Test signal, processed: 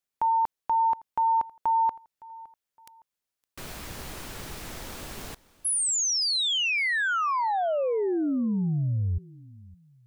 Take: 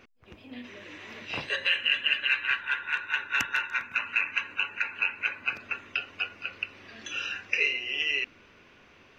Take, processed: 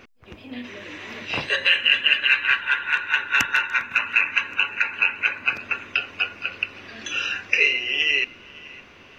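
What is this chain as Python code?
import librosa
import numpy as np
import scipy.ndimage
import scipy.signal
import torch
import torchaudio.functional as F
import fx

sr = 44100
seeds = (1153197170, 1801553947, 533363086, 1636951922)

y = fx.echo_feedback(x, sr, ms=563, feedback_pct=34, wet_db=-22.0)
y = y * librosa.db_to_amplitude(7.5)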